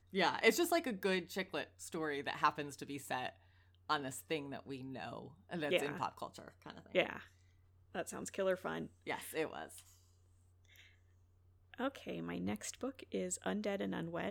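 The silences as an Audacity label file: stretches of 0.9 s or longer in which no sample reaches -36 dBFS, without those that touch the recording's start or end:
9.630000	11.800000	silence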